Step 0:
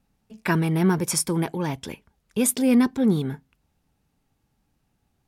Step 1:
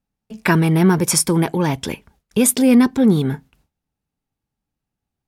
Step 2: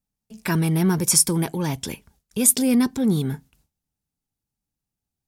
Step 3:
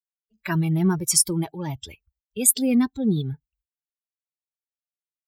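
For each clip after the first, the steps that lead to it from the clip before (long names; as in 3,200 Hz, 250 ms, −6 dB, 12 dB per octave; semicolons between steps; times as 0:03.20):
noise gate with hold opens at −47 dBFS; in parallel at +0.5 dB: downward compressor, threshold −26 dBFS, peak gain reduction 11.5 dB; on the sum: level +3.5 dB
bass and treble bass +4 dB, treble +11 dB; transient designer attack −3 dB, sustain +1 dB; level −8 dB
spectral dynamics exaggerated over time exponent 2; level +1 dB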